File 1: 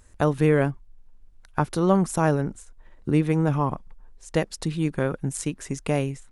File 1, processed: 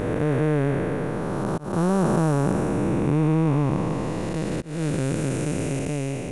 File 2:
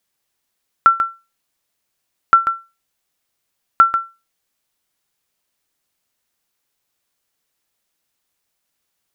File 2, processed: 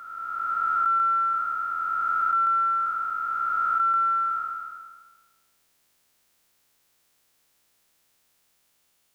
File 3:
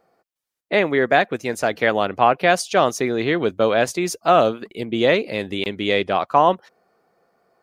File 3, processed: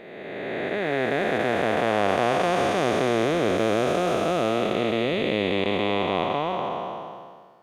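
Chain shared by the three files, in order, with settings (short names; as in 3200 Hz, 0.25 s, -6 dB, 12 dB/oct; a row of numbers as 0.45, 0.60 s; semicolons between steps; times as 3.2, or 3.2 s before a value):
time blur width 1.03 s; auto swell 0.218 s; match loudness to -24 LUFS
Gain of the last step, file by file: +8.0, +8.5, +2.0 dB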